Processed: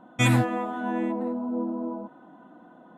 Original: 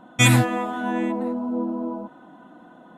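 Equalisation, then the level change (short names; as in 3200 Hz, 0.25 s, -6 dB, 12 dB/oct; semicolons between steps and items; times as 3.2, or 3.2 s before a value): low shelf 110 Hz -6 dB; high shelf 2300 Hz -10 dB; -2.0 dB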